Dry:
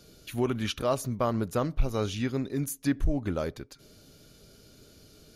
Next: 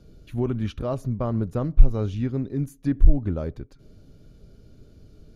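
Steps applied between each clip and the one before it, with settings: tilt EQ -3.5 dB/octave; trim -4 dB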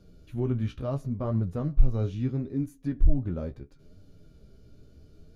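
harmonic-percussive split percussive -7 dB; flange 0.74 Hz, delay 9.8 ms, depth 7.5 ms, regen +34%; trim +2.5 dB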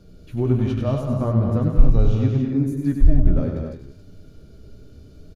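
multi-tap echo 96/170/197/227/273 ms -6/-11/-8/-10/-8.5 dB; trim +6.5 dB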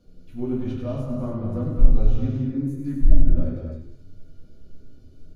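simulated room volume 140 m³, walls furnished, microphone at 1.9 m; trim -11.5 dB

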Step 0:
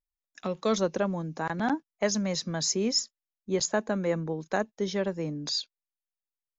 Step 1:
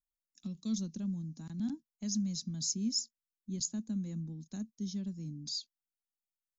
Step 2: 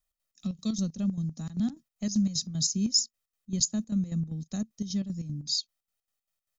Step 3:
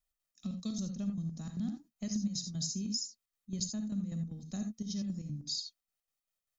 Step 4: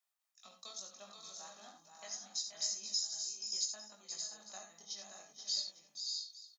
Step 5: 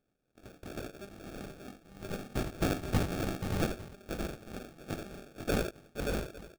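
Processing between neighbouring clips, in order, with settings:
FFT filter 150 Hz 0 dB, 230 Hz +3 dB, 480 Hz -27 dB, 1.9 kHz -24 dB, 4.4 kHz -3 dB, 7.2 kHz +1 dB; trim -5.5 dB
comb 1.6 ms, depth 52%; square tremolo 5.1 Hz, depth 65%, duty 60%; trim +9 dB
compression, threshold -29 dBFS, peak gain reduction 10 dB; gated-style reverb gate 100 ms rising, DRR 6 dB; trim -4.5 dB
ladder high-pass 660 Hz, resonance 35%; chorus 0.74 Hz, delay 18.5 ms, depth 2.5 ms; on a send: multi-tap echo 479/500/577/619/853 ms -9/-12.5/-6/-9/-18 dB; on the sum: trim +11 dB
sample-rate reducer 1 kHz, jitter 0%; trim +7.5 dB

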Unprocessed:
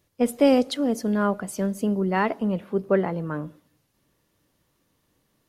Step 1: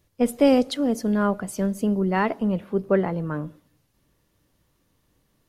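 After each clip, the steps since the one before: bass shelf 83 Hz +10.5 dB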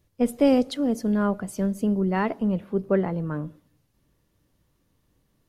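bass shelf 400 Hz +4.5 dB; trim -4 dB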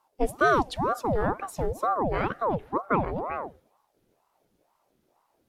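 ring modulator with a swept carrier 600 Hz, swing 65%, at 2.1 Hz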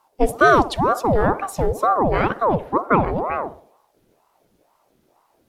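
band-passed feedback delay 60 ms, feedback 53%, band-pass 540 Hz, level -14 dB; trim +8 dB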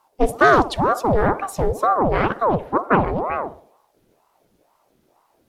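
loudspeaker Doppler distortion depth 0.26 ms

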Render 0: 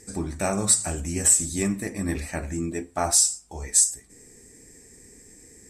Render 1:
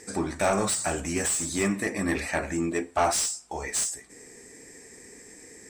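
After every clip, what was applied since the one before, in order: overdrive pedal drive 21 dB, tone 2.5 kHz, clips at -6.5 dBFS; trim -5 dB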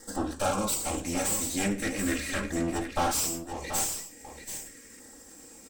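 comb filter that takes the minimum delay 3.7 ms; LFO notch saw down 0.4 Hz 720–2500 Hz; delay 733 ms -9 dB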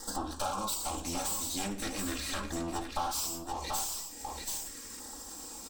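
graphic EQ 125/250/500/1000/2000/4000/8000 Hz -10/-4/-8/+7/-12/+5/-4 dB; compression 3:1, threshold -44 dBFS, peak gain reduction 15.5 dB; trim +8.5 dB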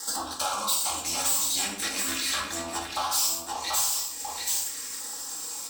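high-pass 51 Hz; tilt shelf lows -8.5 dB, about 640 Hz; simulated room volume 130 m³, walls mixed, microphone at 0.69 m

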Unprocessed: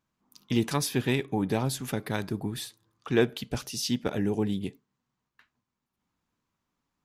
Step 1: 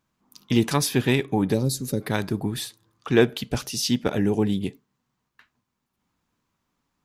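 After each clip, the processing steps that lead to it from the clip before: time-frequency box 1.54–2.01 s, 600–3700 Hz -16 dB; trim +5.5 dB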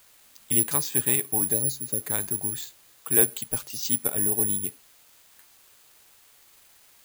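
word length cut 8-bit, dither triangular; careless resampling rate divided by 4×, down filtered, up zero stuff; peaking EQ 200 Hz -5 dB 1.6 oct; trim -8 dB

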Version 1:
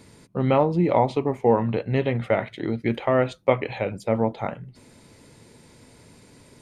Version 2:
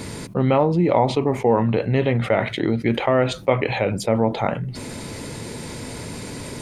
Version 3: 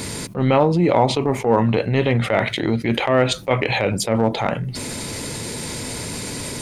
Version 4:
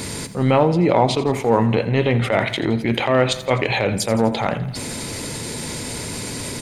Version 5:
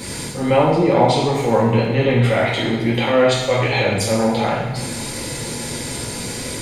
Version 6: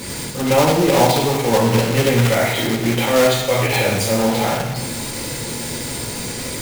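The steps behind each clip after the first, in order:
level flattener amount 50%
treble shelf 2.7 kHz +7.5 dB; transient shaper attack -8 dB, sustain -2 dB; trim +2.5 dB
feedback delay 84 ms, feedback 58%, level -15 dB
two-slope reverb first 0.85 s, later 2.5 s, DRR -6.5 dB; crackle 71 per s -34 dBFS; trim -5.5 dB
block-companded coder 3-bit

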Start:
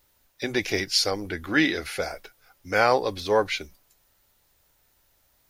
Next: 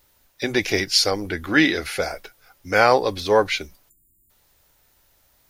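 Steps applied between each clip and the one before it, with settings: spectral selection erased 3.89–4.30 s, 370–6900 Hz; trim +4.5 dB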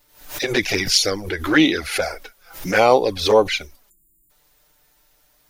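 touch-sensitive flanger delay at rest 6.8 ms, full sweep at -13.5 dBFS; peaking EQ 110 Hz -5 dB 1.3 oct; swell ahead of each attack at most 110 dB/s; trim +4.5 dB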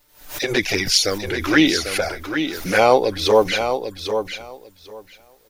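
feedback delay 796 ms, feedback 16%, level -8 dB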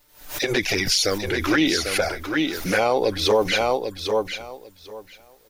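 peak limiter -10 dBFS, peak gain reduction 8.5 dB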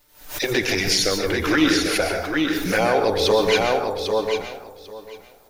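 plate-style reverb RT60 0.62 s, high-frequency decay 0.5×, pre-delay 110 ms, DRR 4 dB

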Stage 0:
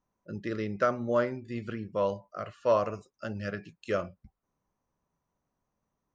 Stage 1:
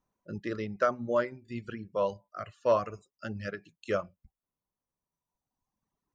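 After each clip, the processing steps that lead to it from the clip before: reverb removal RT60 1.9 s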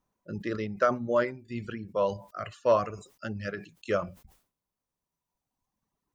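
decay stretcher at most 140 dB/s; trim +2 dB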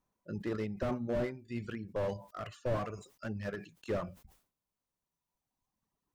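slew-rate limiter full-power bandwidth 23 Hz; trim -3 dB

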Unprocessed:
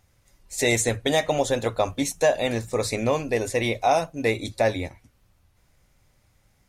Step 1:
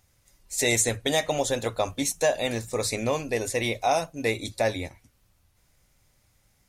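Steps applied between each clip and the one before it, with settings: treble shelf 3.6 kHz +7 dB; trim -3.5 dB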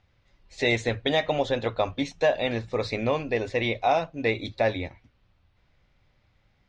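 low-pass 3.9 kHz 24 dB/octave; trim +1 dB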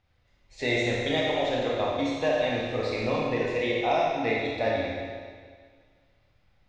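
Schroeder reverb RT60 1.8 s, combs from 25 ms, DRR -4 dB; trim -6 dB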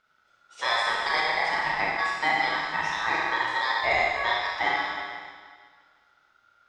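ring modulator 1.4 kHz; trim +3.5 dB

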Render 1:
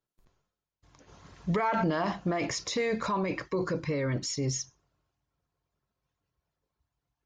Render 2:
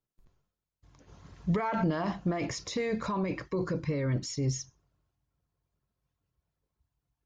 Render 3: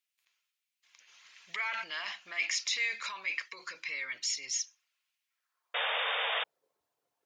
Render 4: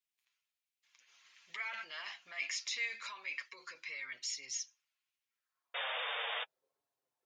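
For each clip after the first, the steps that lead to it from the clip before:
bass shelf 260 Hz +8.5 dB; trim -4.5 dB
high-pass sweep 2.4 kHz -> 490 Hz, 5.26–6.04 s; painted sound noise, 5.74–6.44 s, 440–3700 Hz -37 dBFS; trim +5 dB
flange 0.88 Hz, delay 7.1 ms, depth 1.5 ms, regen -23%; trim -3 dB

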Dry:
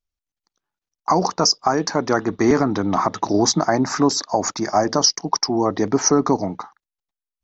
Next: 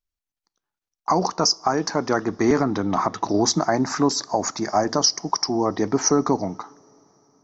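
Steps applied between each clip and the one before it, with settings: two-slope reverb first 0.4 s, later 4.7 s, from -18 dB, DRR 19.5 dB; trim -2.5 dB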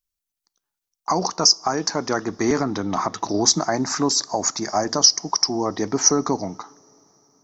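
treble shelf 4.3 kHz +11.5 dB; trim -2 dB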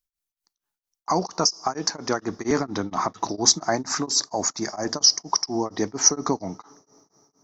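tremolo of two beating tones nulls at 4.3 Hz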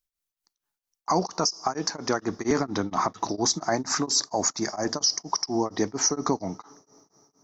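peak limiter -12.5 dBFS, peak gain reduction 9.5 dB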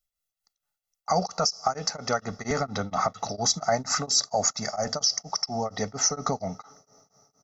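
comb 1.5 ms, depth 96%; trim -2.5 dB

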